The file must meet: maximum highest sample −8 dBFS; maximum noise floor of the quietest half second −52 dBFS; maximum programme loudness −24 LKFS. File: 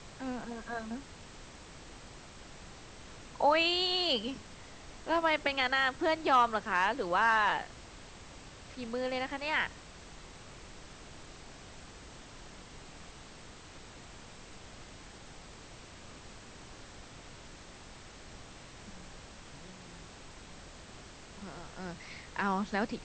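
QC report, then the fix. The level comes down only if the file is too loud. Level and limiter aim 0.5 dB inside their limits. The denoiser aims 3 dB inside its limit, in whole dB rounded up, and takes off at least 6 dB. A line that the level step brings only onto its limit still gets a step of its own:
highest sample −15.5 dBFS: in spec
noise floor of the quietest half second −51 dBFS: out of spec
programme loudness −31.0 LKFS: in spec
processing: broadband denoise 6 dB, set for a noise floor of −51 dBFS

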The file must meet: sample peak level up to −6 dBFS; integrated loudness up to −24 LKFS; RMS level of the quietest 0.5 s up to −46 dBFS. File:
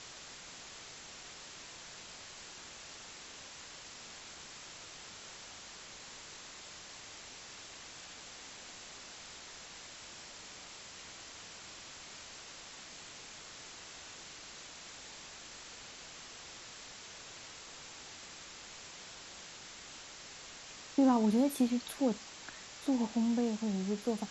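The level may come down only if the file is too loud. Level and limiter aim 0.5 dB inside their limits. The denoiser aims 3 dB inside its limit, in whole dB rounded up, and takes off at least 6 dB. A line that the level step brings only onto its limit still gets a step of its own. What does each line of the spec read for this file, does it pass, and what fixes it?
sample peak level −18.0 dBFS: in spec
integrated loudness −40.5 LKFS: in spec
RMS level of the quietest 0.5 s −50 dBFS: in spec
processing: no processing needed

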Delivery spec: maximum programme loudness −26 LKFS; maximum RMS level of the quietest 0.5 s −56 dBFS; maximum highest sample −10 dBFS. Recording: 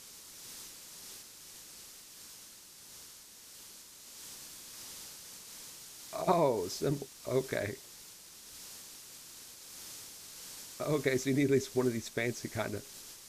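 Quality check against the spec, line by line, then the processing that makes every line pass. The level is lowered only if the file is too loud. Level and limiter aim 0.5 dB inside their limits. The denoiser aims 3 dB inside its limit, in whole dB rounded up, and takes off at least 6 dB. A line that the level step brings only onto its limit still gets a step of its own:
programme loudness −36.0 LKFS: in spec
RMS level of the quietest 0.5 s −53 dBFS: out of spec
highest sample −13.5 dBFS: in spec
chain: broadband denoise 6 dB, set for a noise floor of −53 dBFS

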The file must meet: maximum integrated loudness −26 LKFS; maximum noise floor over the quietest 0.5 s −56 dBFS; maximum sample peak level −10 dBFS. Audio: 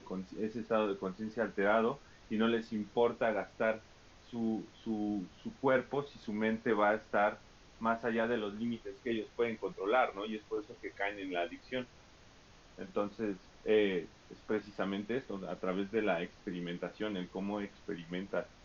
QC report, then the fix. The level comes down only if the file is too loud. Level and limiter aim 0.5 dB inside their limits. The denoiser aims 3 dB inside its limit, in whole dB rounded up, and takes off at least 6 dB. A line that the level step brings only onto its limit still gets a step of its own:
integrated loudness −35.5 LKFS: in spec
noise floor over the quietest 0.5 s −59 dBFS: in spec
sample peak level −17.5 dBFS: in spec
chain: no processing needed

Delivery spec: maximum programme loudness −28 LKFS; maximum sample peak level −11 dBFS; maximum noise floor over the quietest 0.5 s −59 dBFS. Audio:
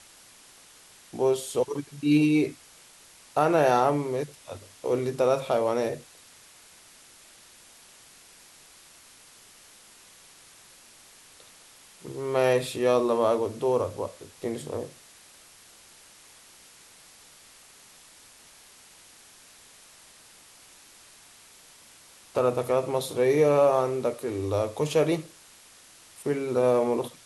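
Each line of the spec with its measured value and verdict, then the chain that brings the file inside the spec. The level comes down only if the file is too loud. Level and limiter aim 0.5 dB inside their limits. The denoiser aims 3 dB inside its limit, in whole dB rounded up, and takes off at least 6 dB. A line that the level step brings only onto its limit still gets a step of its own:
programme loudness −26.0 LKFS: out of spec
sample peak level −9.5 dBFS: out of spec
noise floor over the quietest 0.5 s −53 dBFS: out of spec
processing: broadband denoise 7 dB, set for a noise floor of −53 dBFS
level −2.5 dB

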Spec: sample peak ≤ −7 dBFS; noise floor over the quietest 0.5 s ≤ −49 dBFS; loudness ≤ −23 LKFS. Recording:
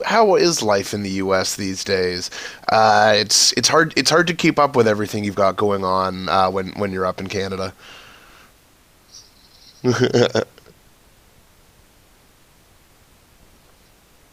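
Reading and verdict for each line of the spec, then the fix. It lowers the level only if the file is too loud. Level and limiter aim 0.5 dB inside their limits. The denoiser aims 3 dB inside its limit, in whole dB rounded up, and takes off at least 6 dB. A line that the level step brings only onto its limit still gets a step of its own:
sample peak −2.5 dBFS: out of spec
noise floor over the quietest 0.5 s −53 dBFS: in spec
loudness −17.5 LKFS: out of spec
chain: level −6 dB

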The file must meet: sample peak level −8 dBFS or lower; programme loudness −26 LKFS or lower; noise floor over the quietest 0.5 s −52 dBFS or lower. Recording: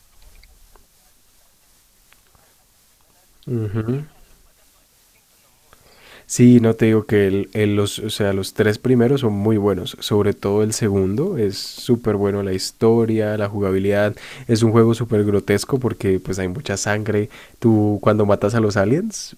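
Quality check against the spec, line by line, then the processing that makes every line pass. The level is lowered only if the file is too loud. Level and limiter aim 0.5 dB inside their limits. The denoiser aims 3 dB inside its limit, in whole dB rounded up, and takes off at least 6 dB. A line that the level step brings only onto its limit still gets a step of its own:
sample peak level −2.0 dBFS: out of spec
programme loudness −18.5 LKFS: out of spec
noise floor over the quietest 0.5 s −56 dBFS: in spec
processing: level −8 dB

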